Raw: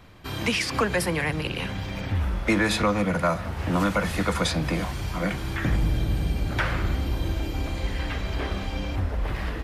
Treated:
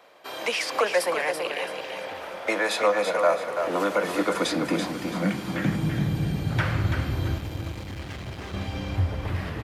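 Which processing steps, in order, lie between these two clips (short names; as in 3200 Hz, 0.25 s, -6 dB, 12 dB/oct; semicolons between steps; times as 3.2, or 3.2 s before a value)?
7.38–8.54 hard clip -33 dBFS, distortion -15 dB; high-pass sweep 560 Hz -> 100 Hz, 3.15–6.8; feedback echo 0.334 s, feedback 32%, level -6.5 dB; gain -2 dB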